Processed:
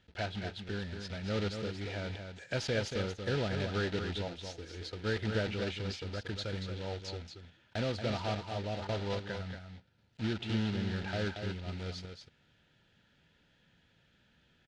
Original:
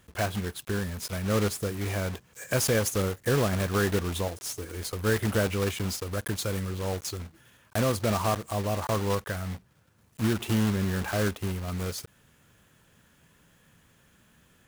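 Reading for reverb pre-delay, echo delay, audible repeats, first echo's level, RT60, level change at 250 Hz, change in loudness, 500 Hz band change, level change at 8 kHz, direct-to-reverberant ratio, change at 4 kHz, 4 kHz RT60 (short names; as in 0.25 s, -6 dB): none, 0.231 s, 1, -7.0 dB, none, -7.5 dB, -7.5 dB, -7.5 dB, -18.0 dB, none, -4.0 dB, none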